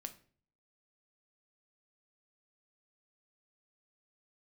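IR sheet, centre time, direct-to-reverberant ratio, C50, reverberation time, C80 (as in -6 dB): 7 ms, 7.0 dB, 14.5 dB, 0.45 s, 19.5 dB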